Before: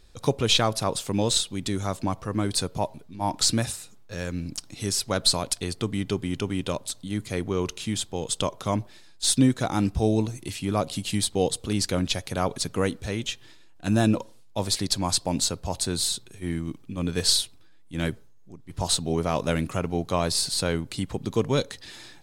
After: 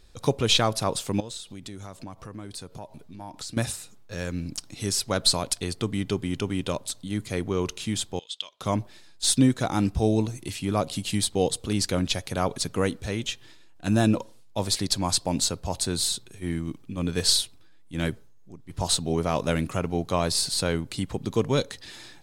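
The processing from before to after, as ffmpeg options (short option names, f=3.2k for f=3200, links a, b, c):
-filter_complex "[0:a]asettb=1/sr,asplit=3[a][b][c];[a]atrim=end=1.204[d];[b]atrim=start=1.2:end=3.57,asetpts=PTS-STARTPTS,afade=t=in:d=0.004:c=qsin,afade=t=out:st=2.366:d=0.004:c=qsin,acompressor=threshold=-39dB:ratio=3:attack=3.2:release=140:knee=1:detection=peak[e];[c]atrim=start=3.566[f];[d][e]acrossfade=d=0.004:c1=hsin:c2=qsin[g];[g][f]acrossfade=d=0.004:c1=qsin:c2=hsin,asettb=1/sr,asplit=3[h][i][j];[h]atrim=end=8.194[k];[i]atrim=start=8.19:end=8.61,asetpts=PTS-STARTPTS,afade=t=in:d=0.004:c=qsin,afade=t=out:st=0.416:d=0.004:c=qsin,bandpass=f=3.4k:t=q:w=3.1[l];[j]atrim=start=8.606[m];[k][l]acrossfade=d=0.004:c1=hsin:c2=qsin[n];[n][m]acrossfade=d=0.004:c1=qsin:c2=hsin"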